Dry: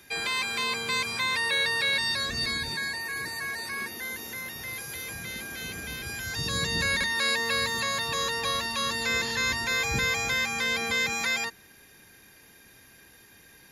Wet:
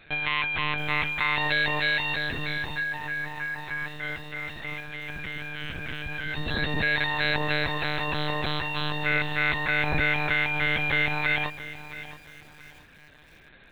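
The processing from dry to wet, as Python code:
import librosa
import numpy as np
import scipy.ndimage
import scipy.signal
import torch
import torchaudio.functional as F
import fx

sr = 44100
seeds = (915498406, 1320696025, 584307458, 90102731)

y = fx.notch_comb(x, sr, f0_hz=360.0)
y = fx.lpc_monotone(y, sr, seeds[0], pitch_hz=150.0, order=10)
y = fx.echo_crushed(y, sr, ms=673, feedback_pct=35, bits=8, wet_db=-14)
y = F.gain(torch.from_numpy(y), 4.0).numpy()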